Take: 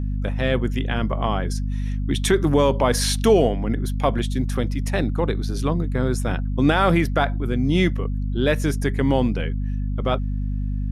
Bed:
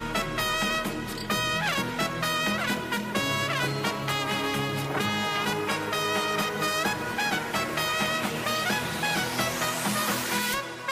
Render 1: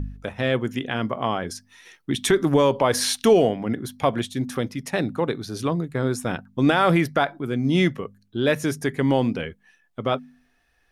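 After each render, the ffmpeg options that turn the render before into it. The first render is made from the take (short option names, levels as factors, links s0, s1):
-af "bandreject=f=50:t=h:w=4,bandreject=f=100:t=h:w=4,bandreject=f=150:t=h:w=4,bandreject=f=200:t=h:w=4,bandreject=f=250:t=h:w=4"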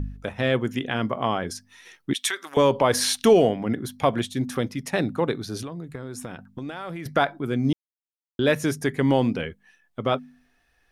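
-filter_complex "[0:a]asettb=1/sr,asplit=3[s0][s1][s2];[s0]atrim=end=2.134[s3];[s1]atrim=start=2.13:end=2.57,asetpts=PTS-STARTPTS,afade=t=in:d=0.004:c=qsin,afade=t=out:st=0.436:d=0.004:c=qsin,highpass=1300[s4];[s2]atrim=start=2.566[s5];[s3][s4]acrossfade=d=0.004:c1=hsin:c2=qsin[s6];[s6][s5]acrossfade=d=0.004:c1=qsin:c2=hsin,asettb=1/sr,asplit=3[s7][s8][s9];[s7]atrim=end=5.614[s10];[s8]atrim=start=5.61:end=7.06,asetpts=PTS-STARTPTS,afade=t=in:d=0.004:c=qsin,afade=t=out:st=1.446:d=0.004:c=qsin,acompressor=threshold=0.0316:ratio=10:attack=3.2:release=140:knee=1:detection=peak[s11];[s9]atrim=start=7.056[s12];[s10][s11]acrossfade=d=0.004:c1=hsin:c2=qsin[s13];[s13][s12]acrossfade=d=0.004:c1=qsin:c2=hsin,asplit=3[s14][s15][s16];[s14]atrim=end=7.73,asetpts=PTS-STARTPTS,afade=t=out:st=7.726:d=0.004:c=hsin[s17];[s15]atrim=start=7.73:end=8.39,asetpts=PTS-STARTPTS,volume=0[s18];[s16]atrim=start=8.39,asetpts=PTS-STARTPTS,afade=t=in:d=0.004:c=hsin[s19];[s17][s18][s19]concat=n=3:v=0:a=1"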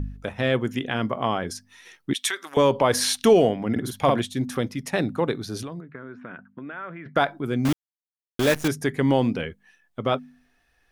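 -filter_complex "[0:a]asettb=1/sr,asplit=3[s0][s1][s2];[s0]atrim=end=3.714[s3];[s1]atrim=start=3.71:end=4.2,asetpts=PTS-STARTPTS,afade=t=in:d=0.004:c=qsin,afade=t=out:st=0.486:d=0.004:c=qsin,asplit=2[s4][s5];[s5]adelay=50,volume=0.75[s6];[s4][s6]amix=inputs=2:normalize=0,atrim=end_sample=21609[s7];[s2]atrim=start=4.196[s8];[s3][s7]acrossfade=d=0.004:c1=hsin:c2=qsin[s9];[s9][s8]acrossfade=d=0.004:c1=qsin:c2=hsin,asplit=3[s10][s11][s12];[s10]afade=t=out:st=5.79:d=0.02[s13];[s11]highpass=210,equalizer=f=330:t=q:w=4:g=-4,equalizer=f=500:t=q:w=4:g=-5,equalizer=f=800:t=q:w=4:g=-9,equalizer=f=1500:t=q:w=4:g=5,lowpass=f=2300:w=0.5412,lowpass=f=2300:w=1.3066,afade=t=in:st=5.79:d=0.02,afade=t=out:st=7.15:d=0.02[s14];[s12]afade=t=in:st=7.15:d=0.02[s15];[s13][s14][s15]amix=inputs=3:normalize=0,asettb=1/sr,asplit=3[s16][s17][s18];[s16]atrim=end=7.654[s19];[s17]atrim=start=7.65:end=8.68,asetpts=PTS-STARTPTS,afade=t=in:d=0.004:c=qsin,afade=t=out:st=1.026:d=0.004:c=qsin,acrusher=bits=5:dc=4:mix=0:aa=0.000001[s20];[s18]atrim=start=8.676[s21];[s19][s20]acrossfade=d=0.004:c1=hsin:c2=qsin[s22];[s22][s21]acrossfade=d=0.004:c1=qsin:c2=hsin"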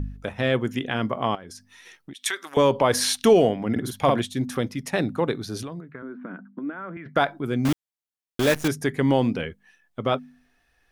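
-filter_complex "[0:a]asettb=1/sr,asplit=3[s0][s1][s2];[s0]atrim=end=1.354[s3];[s1]atrim=start=1.35:end=2.26,asetpts=PTS-STARTPTS,afade=t=in:d=0.004:c=qsin,afade=t=out:st=0.906:d=0.004:c=qsin,acompressor=threshold=0.0126:ratio=5:attack=3.2:release=140:knee=1:detection=peak[s4];[s2]atrim=start=2.256[s5];[s3][s4]acrossfade=d=0.004:c1=hsin:c2=qsin[s6];[s6][s5]acrossfade=d=0.004:c1=qsin:c2=hsin,asettb=1/sr,asplit=3[s7][s8][s9];[s7]atrim=end=6.024[s10];[s8]atrim=start=6.02:end=6.97,asetpts=PTS-STARTPTS,afade=t=in:d=0.004:c=qsin,afade=t=out:st=0.946:d=0.004:c=qsin,highpass=f=180:w=0.5412,highpass=f=180:w=1.3066,equalizer=f=190:t=q:w=4:g=10,equalizer=f=300:t=q:w=4:g=9,equalizer=f=1800:t=q:w=4:g=-4,equalizer=f=2600:t=q:w=4:g=-8,lowpass=f=3000:w=0.5412,lowpass=f=3000:w=1.3066[s11];[s9]atrim=start=6.966[s12];[s10][s11]acrossfade=d=0.004:c1=hsin:c2=qsin[s13];[s13][s12]acrossfade=d=0.004:c1=qsin:c2=hsin"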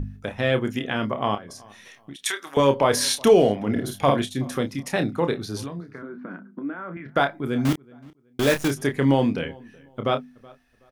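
-filter_complex "[0:a]asplit=2[s0][s1];[s1]adelay=29,volume=0.398[s2];[s0][s2]amix=inputs=2:normalize=0,asplit=2[s3][s4];[s4]adelay=374,lowpass=f=2700:p=1,volume=0.0631,asplit=2[s5][s6];[s6]adelay=374,lowpass=f=2700:p=1,volume=0.29[s7];[s3][s5][s7]amix=inputs=3:normalize=0"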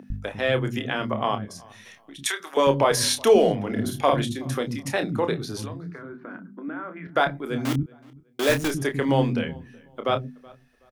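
-filter_complex "[0:a]acrossover=split=260[s0][s1];[s0]adelay=100[s2];[s2][s1]amix=inputs=2:normalize=0"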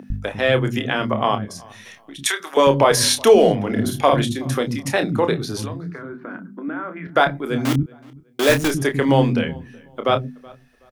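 -af "volume=1.88,alimiter=limit=0.708:level=0:latency=1"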